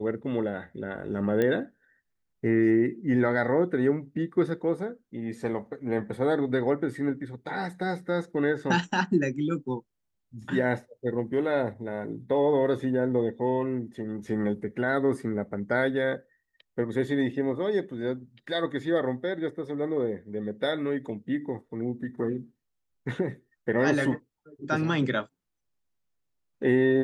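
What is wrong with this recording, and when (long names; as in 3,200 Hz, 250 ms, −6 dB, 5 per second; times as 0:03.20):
0:01.42: click −15 dBFS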